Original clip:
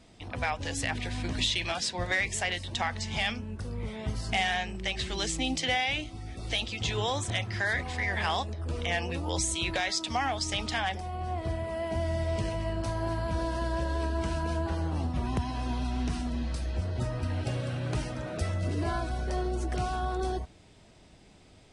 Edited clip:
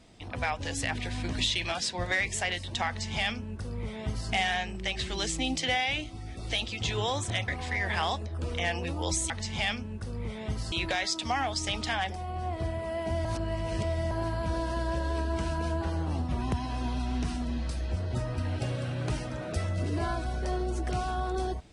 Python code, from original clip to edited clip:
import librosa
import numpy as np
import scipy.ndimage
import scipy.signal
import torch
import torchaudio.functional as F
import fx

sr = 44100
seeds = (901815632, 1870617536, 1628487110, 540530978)

y = fx.edit(x, sr, fx.duplicate(start_s=2.88, length_s=1.42, to_s=9.57),
    fx.cut(start_s=7.48, length_s=0.27),
    fx.reverse_span(start_s=12.1, length_s=0.86), tone=tone)